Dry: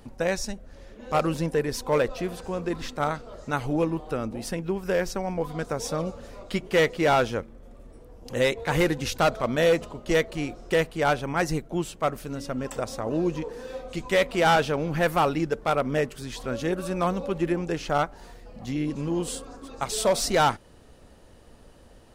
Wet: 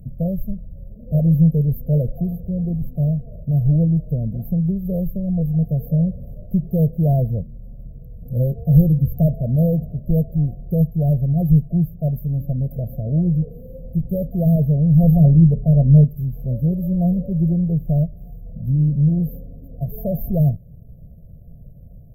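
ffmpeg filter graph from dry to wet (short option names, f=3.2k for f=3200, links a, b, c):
-filter_complex "[0:a]asettb=1/sr,asplit=3[a][b][c];[a]atrim=end=15.034[d];[b]atrim=start=15.03:end=16.04,asetpts=PTS-STARTPTS,afade=t=in:d=0.004:c=qsin,afade=t=out:st=1.006:d=0.004:c=qsin,lowpass=12k,lowshelf=f=280:g=7.5,bandreject=f=60:t=h:w=6,bandreject=f=120:t=h:w=6,bandreject=f=180:t=h:w=6,bandreject=f=240:t=h:w=6,bandreject=f=300:t=h:w=6,bandreject=f=360:t=h:w=6,bandreject=f=420:t=h:w=6,bandreject=f=480:t=h:w=6,bandreject=f=540:t=h:w=6,bandreject=f=600:t=h:w=6[e];[c]atrim=start=16.036[f];[d][e]acrossfade=d=0.004:c1=hsin:c2=qsin[g];[g][f]acrossfade=d=0.004:c1=qsin:c2=hsin,aemphasis=mode=production:type=cd,afftfilt=real='re*(1-between(b*sr/4096,720,12000))':imag='im*(1-between(b*sr/4096,720,12000))':win_size=4096:overlap=0.75,lowshelf=f=220:t=q:w=3:g=12.5,volume=-1dB"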